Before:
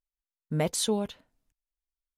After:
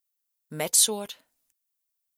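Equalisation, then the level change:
RIAA equalisation recording
0.0 dB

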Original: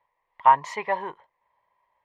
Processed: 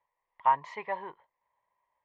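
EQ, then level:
low-pass filter 4,000 Hz 12 dB per octave
−8.0 dB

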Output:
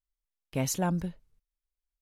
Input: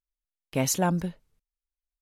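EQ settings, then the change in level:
low-shelf EQ 110 Hz +9.5 dB
−5.5 dB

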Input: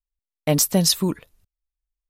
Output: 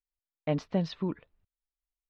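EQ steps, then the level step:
low-pass filter 3,700 Hz 12 dB per octave
high-frequency loss of the air 280 metres
low-shelf EQ 170 Hz −3.5 dB
−7.5 dB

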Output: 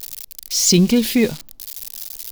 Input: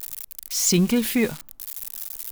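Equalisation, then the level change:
drawn EQ curve 500 Hz 0 dB, 1,300 Hz −8 dB, 4,800 Hz +4 dB, 8,500 Hz −4 dB
+5.5 dB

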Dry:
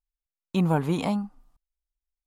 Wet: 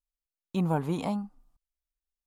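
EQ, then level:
dynamic equaliser 920 Hz, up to +4 dB, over −35 dBFS, Q 0.84
parametric band 1,700 Hz −4 dB 2.6 octaves
−4.5 dB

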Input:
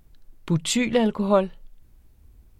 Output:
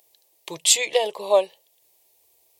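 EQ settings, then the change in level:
high-pass filter 440 Hz 12 dB per octave
spectral tilt +2 dB per octave
phaser with its sweep stopped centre 580 Hz, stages 4
+5.5 dB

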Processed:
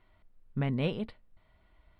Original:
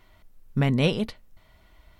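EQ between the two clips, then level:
moving average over 7 samples
−8.0 dB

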